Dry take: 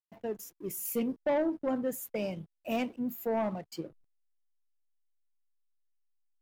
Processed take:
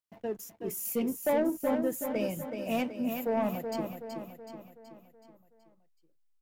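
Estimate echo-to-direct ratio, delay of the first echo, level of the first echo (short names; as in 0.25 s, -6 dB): -5.0 dB, 0.375 s, -6.5 dB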